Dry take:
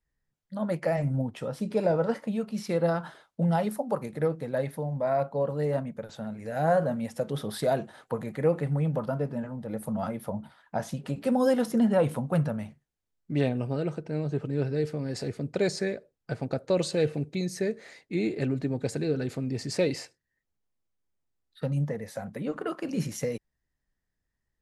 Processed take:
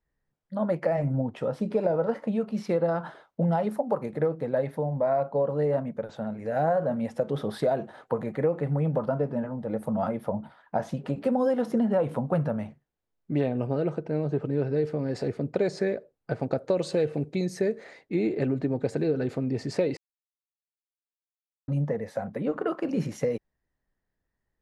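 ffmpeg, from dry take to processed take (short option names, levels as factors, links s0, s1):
-filter_complex "[0:a]asettb=1/sr,asplit=3[s0][s1][s2];[s0]atrim=end=16.394[s3];[s1]atrim=start=16.39:end=17.84,asetpts=PTS-STARTPTS,afade=t=in:d=0.004:c=qsin,afade=t=out:st=1.446:d=0.004:c=qsin,highshelf=f=6000:g=7[s4];[s2]atrim=start=17.836[s5];[s3][s4]acrossfade=d=0.004:c1=hsin:c2=qsin[s6];[s6][s5]acrossfade=d=0.004:c1=qsin:c2=hsin,asplit=3[s7][s8][s9];[s7]atrim=end=19.97,asetpts=PTS-STARTPTS,afade=t=out:st=19.966:d=0.004:c=hsin[s10];[s8]atrim=start=19.97:end=21.68,asetpts=PTS-STARTPTS,volume=0[s11];[s9]atrim=start=21.68,asetpts=PTS-STARTPTS,afade=t=in:d=0.004:c=hsin[s12];[s10][s11][s12]concat=n=3:v=0:a=1,lowpass=f=2900:p=1,equalizer=f=580:w=0.46:g=6,acompressor=threshold=0.0891:ratio=6"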